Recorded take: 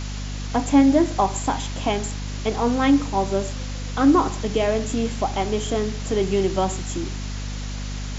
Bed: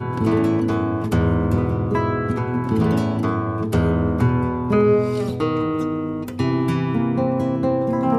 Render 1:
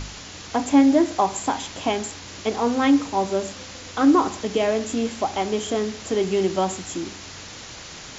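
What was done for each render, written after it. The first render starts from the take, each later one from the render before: de-hum 50 Hz, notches 5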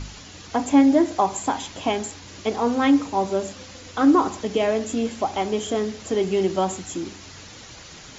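denoiser 6 dB, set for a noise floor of -39 dBFS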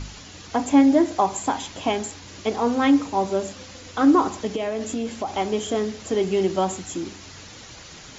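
4.54–5.32 compressor, threshold -22 dBFS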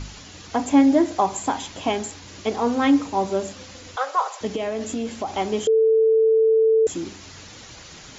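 3.96–4.41 elliptic high-pass 500 Hz; 5.67–6.87 bleep 444 Hz -13.5 dBFS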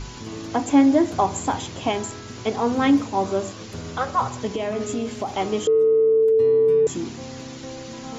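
add bed -16.5 dB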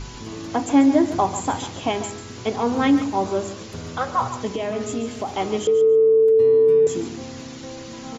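feedback echo 0.142 s, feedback 17%, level -12 dB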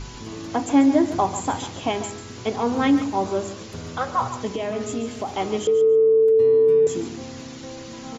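gain -1 dB

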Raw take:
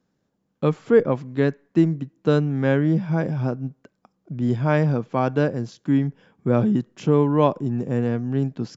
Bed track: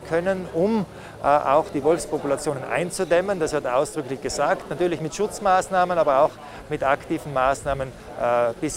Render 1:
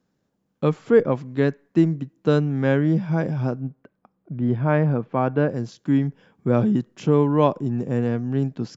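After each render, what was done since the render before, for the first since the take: 3.6–5.49 LPF 2300 Hz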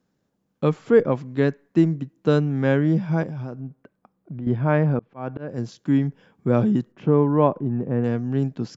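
3.23–4.47 compressor 3:1, threshold -30 dBFS; 4.99–5.58 auto swell 0.287 s; 6.92–8.04 LPF 1800 Hz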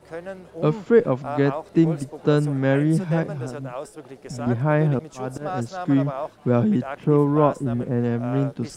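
add bed track -12 dB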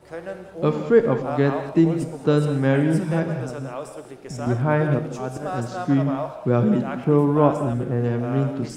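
non-linear reverb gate 0.24 s flat, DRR 6 dB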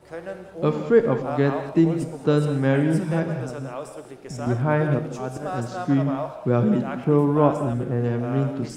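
gain -1 dB

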